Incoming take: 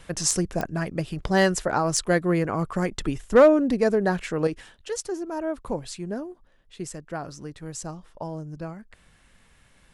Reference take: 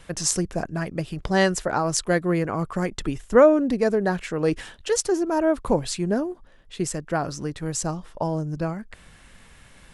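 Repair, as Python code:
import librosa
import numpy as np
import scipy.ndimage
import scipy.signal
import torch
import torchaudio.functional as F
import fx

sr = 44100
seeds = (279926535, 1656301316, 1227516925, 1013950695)

y = fx.fix_declip(x, sr, threshold_db=-8.5)
y = fx.fix_declick_ar(y, sr, threshold=10.0)
y = fx.fix_level(y, sr, at_s=4.47, step_db=8.0)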